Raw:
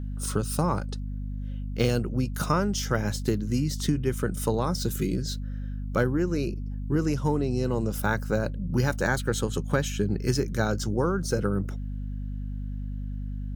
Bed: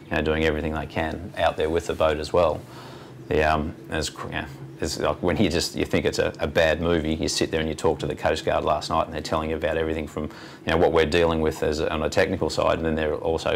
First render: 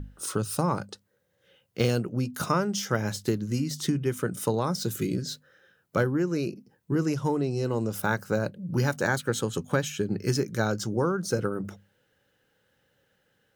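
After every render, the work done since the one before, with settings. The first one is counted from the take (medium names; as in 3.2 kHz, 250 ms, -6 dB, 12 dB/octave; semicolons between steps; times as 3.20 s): hum notches 50/100/150/200/250 Hz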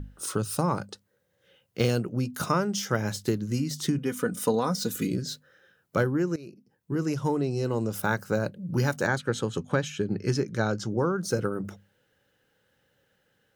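3.98–5.08 s: comb 4.1 ms; 6.36–7.23 s: fade in, from -18 dB; 9.06–11.16 s: distance through air 63 m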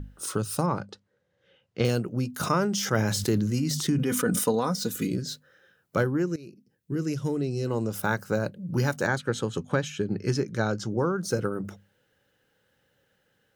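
0.66–1.85 s: distance through air 100 m; 2.40–4.44 s: decay stretcher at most 28 dB/s; 6.26–7.67 s: peaking EQ 920 Hz -11.5 dB 0.98 oct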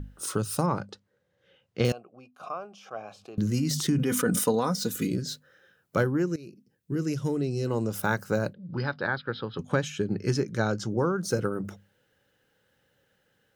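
1.92–3.38 s: vowel filter a; 8.53–9.59 s: rippled Chebyshev low-pass 5.1 kHz, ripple 6 dB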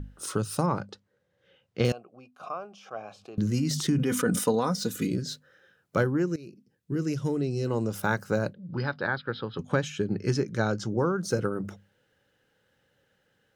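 treble shelf 12 kHz -9.5 dB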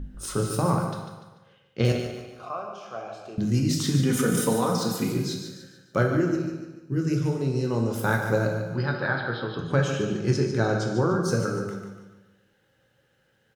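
feedback delay 146 ms, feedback 41%, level -8.5 dB; plate-style reverb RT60 0.93 s, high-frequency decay 0.9×, DRR 2 dB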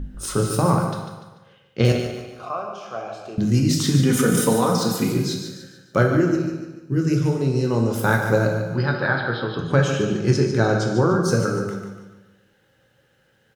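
trim +5 dB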